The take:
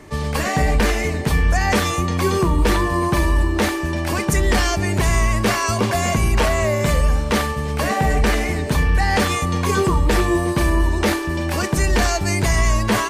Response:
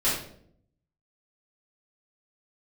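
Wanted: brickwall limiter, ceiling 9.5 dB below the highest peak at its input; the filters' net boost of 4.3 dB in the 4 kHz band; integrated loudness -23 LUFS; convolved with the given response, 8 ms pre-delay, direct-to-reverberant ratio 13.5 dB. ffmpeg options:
-filter_complex "[0:a]equalizer=f=4000:t=o:g=5.5,alimiter=limit=0.168:level=0:latency=1,asplit=2[s0][s1];[1:a]atrim=start_sample=2205,adelay=8[s2];[s1][s2]afir=irnorm=-1:irlink=0,volume=0.0531[s3];[s0][s3]amix=inputs=2:normalize=0,volume=1.12"

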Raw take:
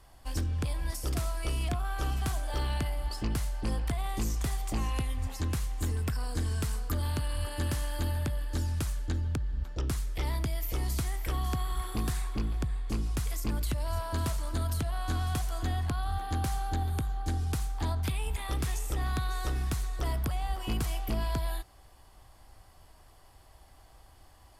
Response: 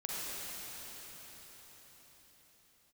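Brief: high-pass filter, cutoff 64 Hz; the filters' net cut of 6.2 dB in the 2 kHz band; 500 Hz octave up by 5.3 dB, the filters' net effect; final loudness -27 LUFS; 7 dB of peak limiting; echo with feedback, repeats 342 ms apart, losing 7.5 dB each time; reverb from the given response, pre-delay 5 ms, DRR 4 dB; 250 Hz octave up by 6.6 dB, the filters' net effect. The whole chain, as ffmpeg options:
-filter_complex "[0:a]highpass=64,equalizer=f=250:t=o:g=7,equalizer=f=500:t=o:g=5.5,equalizer=f=2000:t=o:g=-9,alimiter=limit=0.0668:level=0:latency=1,aecho=1:1:342|684|1026|1368|1710:0.422|0.177|0.0744|0.0312|0.0131,asplit=2[s0][s1];[1:a]atrim=start_sample=2205,adelay=5[s2];[s1][s2]afir=irnorm=-1:irlink=0,volume=0.376[s3];[s0][s3]amix=inputs=2:normalize=0,volume=2"

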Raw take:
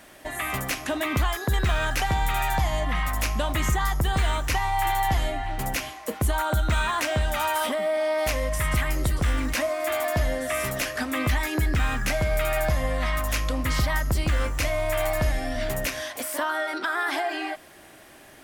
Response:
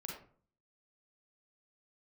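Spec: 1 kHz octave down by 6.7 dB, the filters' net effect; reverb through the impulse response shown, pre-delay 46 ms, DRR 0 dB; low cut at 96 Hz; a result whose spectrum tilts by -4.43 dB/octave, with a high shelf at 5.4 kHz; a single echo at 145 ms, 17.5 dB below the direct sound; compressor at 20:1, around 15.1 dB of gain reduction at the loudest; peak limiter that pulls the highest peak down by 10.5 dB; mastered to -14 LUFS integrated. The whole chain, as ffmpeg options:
-filter_complex "[0:a]highpass=96,equalizer=f=1000:t=o:g=-9,highshelf=f=5400:g=-5.5,acompressor=threshold=0.0126:ratio=20,alimiter=level_in=3.98:limit=0.0631:level=0:latency=1,volume=0.251,aecho=1:1:145:0.133,asplit=2[s0][s1];[1:a]atrim=start_sample=2205,adelay=46[s2];[s1][s2]afir=irnorm=-1:irlink=0,volume=1.26[s3];[s0][s3]amix=inputs=2:normalize=0,volume=23.7"

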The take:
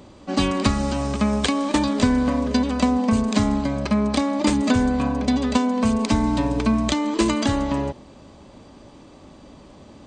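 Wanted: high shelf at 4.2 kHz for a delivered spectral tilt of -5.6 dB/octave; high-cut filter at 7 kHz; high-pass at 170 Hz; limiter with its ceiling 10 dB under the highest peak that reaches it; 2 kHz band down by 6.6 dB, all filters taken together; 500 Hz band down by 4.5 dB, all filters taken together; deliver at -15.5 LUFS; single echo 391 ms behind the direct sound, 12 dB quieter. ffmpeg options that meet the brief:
-af "highpass=170,lowpass=7000,equalizer=f=500:t=o:g=-5,equalizer=f=2000:t=o:g=-6.5,highshelf=f=4200:g=-8.5,alimiter=limit=0.119:level=0:latency=1,aecho=1:1:391:0.251,volume=3.55"

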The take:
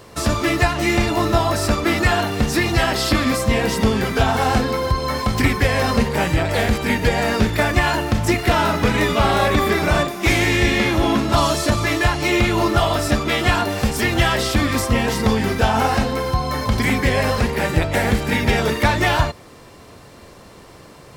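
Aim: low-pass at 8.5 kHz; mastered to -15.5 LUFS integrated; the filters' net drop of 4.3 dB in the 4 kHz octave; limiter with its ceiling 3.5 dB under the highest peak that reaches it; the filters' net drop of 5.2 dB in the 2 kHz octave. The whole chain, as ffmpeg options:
-af "lowpass=8500,equalizer=f=2000:t=o:g=-5.5,equalizer=f=4000:t=o:g=-3.5,volume=1.88,alimiter=limit=0.596:level=0:latency=1"

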